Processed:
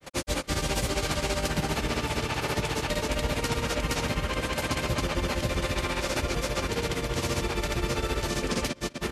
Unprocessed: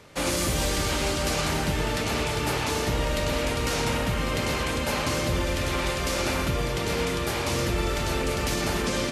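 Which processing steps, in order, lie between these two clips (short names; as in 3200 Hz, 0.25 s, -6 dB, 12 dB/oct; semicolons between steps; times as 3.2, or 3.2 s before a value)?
outdoor echo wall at 24 m, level -23 dB; grains 0.1 s, grains 15/s, spray 0.395 s, pitch spread up and down by 0 st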